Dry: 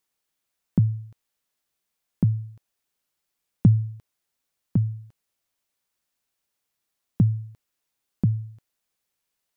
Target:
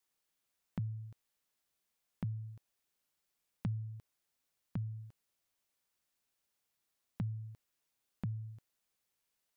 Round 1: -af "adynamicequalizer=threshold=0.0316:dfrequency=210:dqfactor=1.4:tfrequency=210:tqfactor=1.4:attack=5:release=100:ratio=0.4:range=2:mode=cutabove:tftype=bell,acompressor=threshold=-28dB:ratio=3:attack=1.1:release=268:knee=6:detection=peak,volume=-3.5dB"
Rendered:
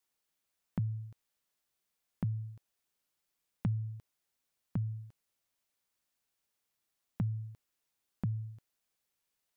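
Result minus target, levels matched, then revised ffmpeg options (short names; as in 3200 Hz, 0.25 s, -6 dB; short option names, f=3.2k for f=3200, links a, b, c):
compressor: peak gain reduction -4.5 dB
-af "adynamicequalizer=threshold=0.0316:dfrequency=210:dqfactor=1.4:tfrequency=210:tqfactor=1.4:attack=5:release=100:ratio=0.4:range=2:mode=cutabove:tftype=bell,acompressor=threshold=-34.5dB:ratio=3:attack=1.1:release=268:knee=6:detection=peak,volume=-3.5dB"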